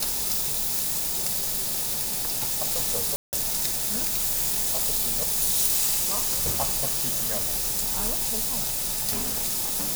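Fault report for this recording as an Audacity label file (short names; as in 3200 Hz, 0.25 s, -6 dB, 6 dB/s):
3.160000	3.330000	gap 0.169 s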